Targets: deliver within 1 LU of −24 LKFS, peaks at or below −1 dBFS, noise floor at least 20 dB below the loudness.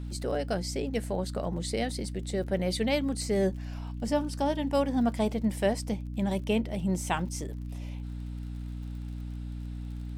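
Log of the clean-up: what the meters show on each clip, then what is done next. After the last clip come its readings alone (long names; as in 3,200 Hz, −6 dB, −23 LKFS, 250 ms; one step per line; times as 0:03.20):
crackle rate 40 per second; mains hum 60 Hz; hum harmonics up to 300 Hz; level of the hum −34 dBFS; integrated loudness −31.5 LKFS; sample peak −14.0 dBFS; target loudness −24.0 LKFS
→ click removal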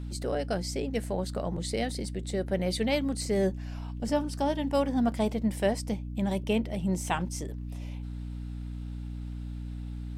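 crackle rate 0.29 per second; mains hum 60 Hz; hum harmonics up to 300 Hz; level of the hum −34 dBFS
→ hum removal 60 Hz, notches 5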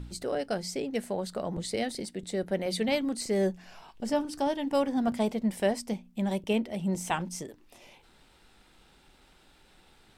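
mains hum none found; integrated loudness −31.0 LKFS; sample peak −14.0 dBFS; target loudness −24.0 LKFS
→ level +7 dB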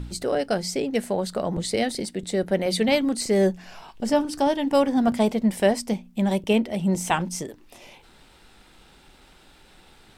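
integrated loudness −24.0 LKFS; sample peak −7.0 dBFS; background noise floor −54 dBFS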